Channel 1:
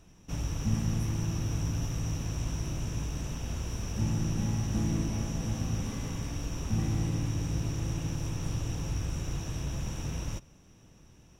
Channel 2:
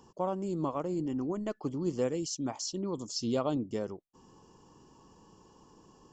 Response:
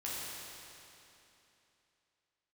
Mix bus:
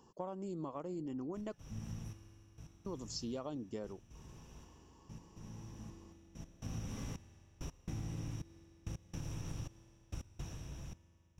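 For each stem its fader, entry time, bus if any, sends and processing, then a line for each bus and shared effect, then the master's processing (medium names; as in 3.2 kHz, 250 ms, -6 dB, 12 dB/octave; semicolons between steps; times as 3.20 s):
10.37 s -6.5 dB -> 10.61 s -14 dB, 1.05 s, send -18.5 dB, trance gate "...x..xxxxxx.." 167 bpm -60 dB; auto duck -19 dB, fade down 0.95 s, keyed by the second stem
-5.5 dB, 0.00 s, muted 1.56–2.86 s, no send, none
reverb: on, RT60 3.0 s, pre-delay 10 ms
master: compression 6:1, threshold -38 dBFS, peak gain reduction 7.5 dB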